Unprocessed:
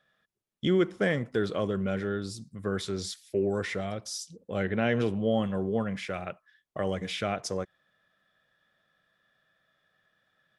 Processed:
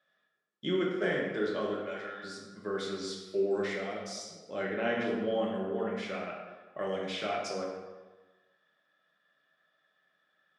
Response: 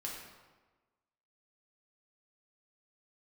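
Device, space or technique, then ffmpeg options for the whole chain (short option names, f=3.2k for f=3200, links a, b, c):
supermarket ceiling speaker: -filter_complex "[0:a]asettb=1/sr,asplit=3[a][b][c];[a]atrim=end=1.744[d];[b]atrim=start=1.74:end=2.24,asetpts=PTS-STARTPTS,afade=t=in:d=0.004:c=qsin,afade=t=out:st=0.496:d=0.004:c=qsin,highpass=710[e];[c]atrim=start=2.236[f];[d][e]acrossfade=d=0.004:c1=hsin:c2=qsin[g];[g][f]acrossfade=d=0.004:c1=qsin:c2=hsin,highpass=240,lowpass=6.9k[h];[1:a]atrim=start_sample=2205[i];[h][i]afir=irnorm=-1:irlink=0,volume=-1.5dB"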